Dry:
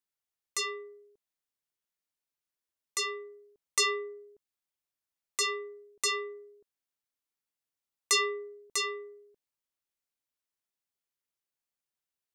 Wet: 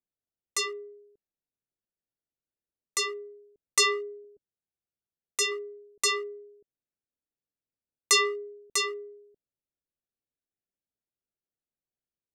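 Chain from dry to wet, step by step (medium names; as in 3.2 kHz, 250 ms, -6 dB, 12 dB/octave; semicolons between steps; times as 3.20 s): local Wiener filter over 41 samples; 4.24–5.52 s: comb of notches 290 Hz; trim +4.5 dB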